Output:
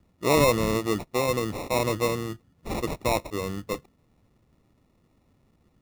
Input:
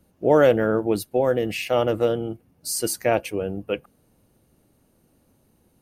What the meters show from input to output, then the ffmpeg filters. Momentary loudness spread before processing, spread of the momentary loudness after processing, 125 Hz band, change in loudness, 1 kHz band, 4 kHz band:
13 LU, 14 LU, +0.5 dB, -4.0 dB, -0.5 dB, +0.5 dB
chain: -af "acrusher=samples=28:mix=1:aa=0.000001,lowshelf=f=200:g=6.5,volume=0.531"

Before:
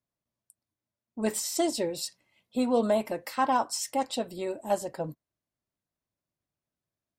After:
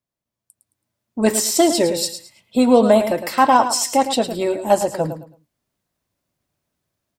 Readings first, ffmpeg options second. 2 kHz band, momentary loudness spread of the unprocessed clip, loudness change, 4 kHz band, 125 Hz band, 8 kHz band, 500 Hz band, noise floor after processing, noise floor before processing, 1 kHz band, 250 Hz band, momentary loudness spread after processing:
+12.0 dB, 10 LU, +12.0 dB, +12.0 dB, +12.0 dB, +12.5 dB, +12.0 dB, -85 dBFS, under -85 dBFS, +12.0 dB, +12.5 dB, 11 LU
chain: -af "aecho=1:1:109|218|327:0.316|0.0791|0.0198,dynaudnorm=f=420:g=3:m=3.55,volume=1.19"

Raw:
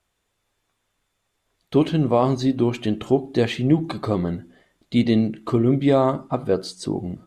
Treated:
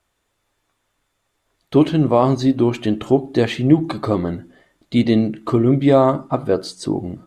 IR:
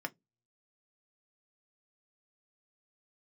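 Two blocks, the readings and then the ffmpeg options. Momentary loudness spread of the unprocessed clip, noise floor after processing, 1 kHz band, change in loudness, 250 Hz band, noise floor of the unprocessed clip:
8 LU, -71 dBFS, +4.0 dB, +3.5 dB, +4.0 dB, -74 dBFS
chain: -filter_complex "[0:a]asplit=2[s0][s1];[1:a]atrim=start_sample=2205,lowpass=3200[s2];[s1][s2]afir=irnorm=-1:irlink=0,volume=0.237[s3];[s0][s3]amix=inputs=2:normalize=0,volume=1.33"

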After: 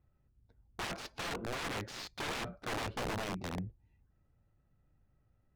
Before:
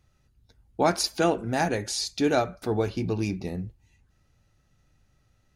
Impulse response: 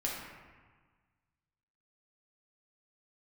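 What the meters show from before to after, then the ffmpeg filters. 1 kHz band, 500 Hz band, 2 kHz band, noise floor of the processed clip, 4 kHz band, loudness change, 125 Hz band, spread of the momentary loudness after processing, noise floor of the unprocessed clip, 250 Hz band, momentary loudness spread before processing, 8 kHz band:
-11.5 dB, -16.0 dB, -6.5 dB, -74 dBFS, -9.5 dB, -12.5 dB, -12.0 dB, 5 LU, -67 dBFS, -15.5 dB, 10 LU, -13.5 dB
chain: -af "aeval=exprs='(mod(17.8*val(0)+1,2)-1)/17.8':c=same,adynamicsmooth=sensitivity=5:basefreq=1600,volume=0.501"

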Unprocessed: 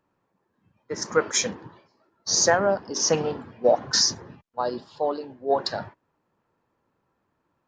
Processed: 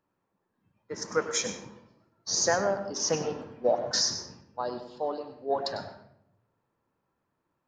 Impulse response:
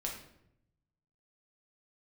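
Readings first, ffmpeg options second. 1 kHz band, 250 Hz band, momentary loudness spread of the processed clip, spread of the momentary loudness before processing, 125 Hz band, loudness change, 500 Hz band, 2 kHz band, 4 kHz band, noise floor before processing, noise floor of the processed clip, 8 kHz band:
-5.5 dB, -5.5 dB, 14 LU, 16 LU, -5.5 dB, -5.5 dB, -5.5 dB, -5.5 dB, -5.5 dB, -75 dBFS, -80 dBFS, -5.5 dB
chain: -filter_complex "[0:a]asplit=2[s0][s1];[1:a]atrim=start_sample=2205,adelay=98[s2];[s1][s2]afir=irnorm=-1:irlink=0,volume=0.316[s3];[s0][s3]amix=inputs=2:normalize=0,volume=0.501"

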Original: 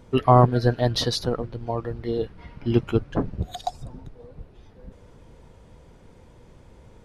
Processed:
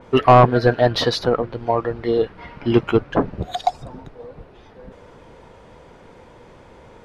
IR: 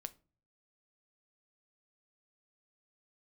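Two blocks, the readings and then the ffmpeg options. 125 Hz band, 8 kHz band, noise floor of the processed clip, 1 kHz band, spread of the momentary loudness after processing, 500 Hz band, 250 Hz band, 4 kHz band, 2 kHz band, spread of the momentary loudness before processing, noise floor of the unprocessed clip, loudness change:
+0.5 dB, no reading, -47 dBFS, +6.5 dB, 15 LU, +7.0 dB, +4.0 dB, +3.5 dB, +10.5 dB, 17 LU, -51 dBFS, +5.0 dB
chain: -filter_complex "[0:a]asplit=2[s0][s1];[s1]highpass=f=720:p=1,volume=6.31,asoftclip=type=tanh:threshold=0.668[s2];[s0][s2]amix=inputs=2:normalize=0,lowpass=f=1900:p=1,volume=0.501,adynamicequalizer=threshold=0.01:dfrequency=3900:dqfactor=0.7:tfrequency=3900:tqfactor=0.7:attack=5:release=100:ratio=0.375:range=2.5:mode=cutabove:tftype=highshelf,volume=1.41"

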